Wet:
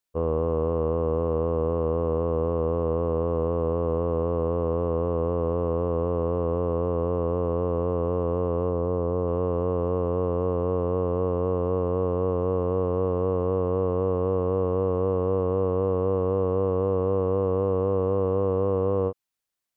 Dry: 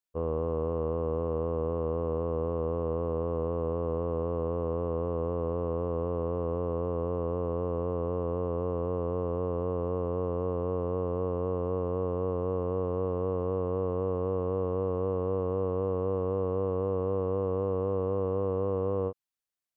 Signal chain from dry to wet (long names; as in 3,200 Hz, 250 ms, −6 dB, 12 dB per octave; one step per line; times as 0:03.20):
0:08.69–0:09.28: high-shelf EQ 2,400 Hz −10 dB
level +5.5 dB